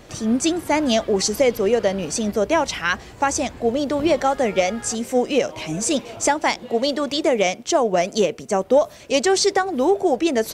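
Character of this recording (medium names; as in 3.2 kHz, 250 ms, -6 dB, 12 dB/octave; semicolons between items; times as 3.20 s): noise floor -42 dBFS; spectral tilt -3.0 dB/octave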